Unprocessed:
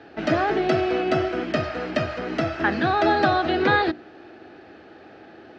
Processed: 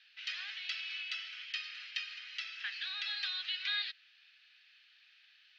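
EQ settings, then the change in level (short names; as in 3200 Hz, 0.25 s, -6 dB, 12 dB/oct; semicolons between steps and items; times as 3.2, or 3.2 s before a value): inverse Chebyshev high-pass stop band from 480 Hz, stop band 80 dB; air absorption 180 m; +3.5 dB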